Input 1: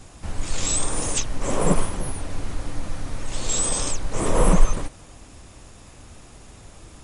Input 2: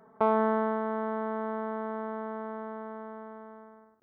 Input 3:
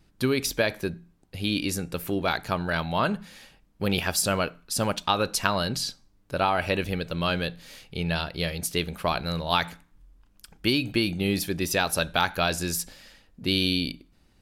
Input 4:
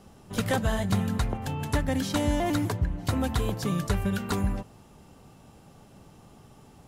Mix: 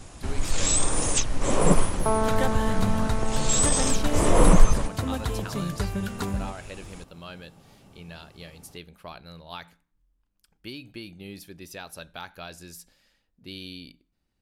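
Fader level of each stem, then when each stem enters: +0.5, 0.0, −15.5, −2.0 decibels; 0.00, 1.85, 0.00, 1.90 seconds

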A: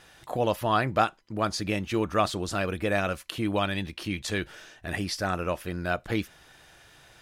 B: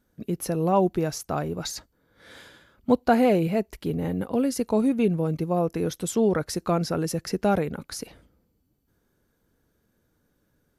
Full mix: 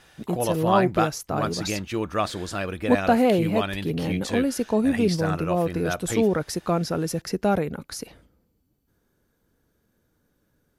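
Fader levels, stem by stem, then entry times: −0.5, +0.5 decibels; 0.00, 0.00 seconds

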